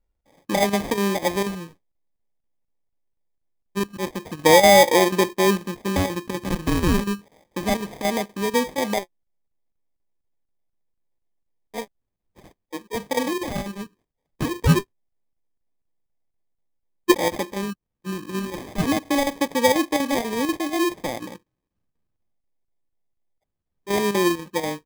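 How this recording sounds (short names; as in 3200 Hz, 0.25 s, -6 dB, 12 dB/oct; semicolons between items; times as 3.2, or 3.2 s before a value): phasing stages 8, 0.26 Hz, lowest notch 640–1400 Hz; chopped level 4.1 Hz, depth 60%, duty 85%; aliases and images of a low sample rate 1400 Hz, jitter 0%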